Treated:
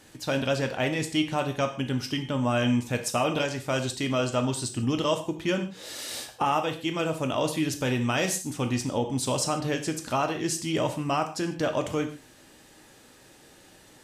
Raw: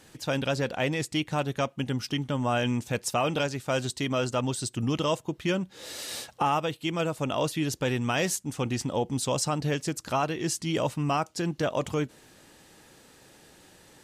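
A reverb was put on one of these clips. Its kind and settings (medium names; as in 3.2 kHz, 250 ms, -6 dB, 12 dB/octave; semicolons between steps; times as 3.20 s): gated-style reverb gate 180 ms falling, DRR 5.5 dB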